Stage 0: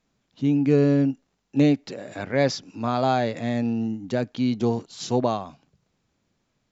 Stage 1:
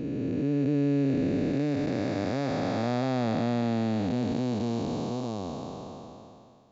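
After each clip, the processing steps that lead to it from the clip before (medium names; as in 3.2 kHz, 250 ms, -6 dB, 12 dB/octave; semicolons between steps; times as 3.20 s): spectral blur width 1400 ms; trim +1 dB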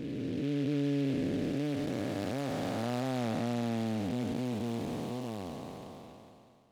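delay time shaken by noise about 2.6 kHz, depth 0.048 ms; trim -5.5 dB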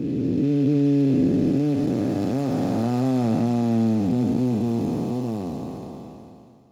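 reverberation RT60 0.40 s, pre-delay 3 ms, DRR 9 dB; trim +5.5 dB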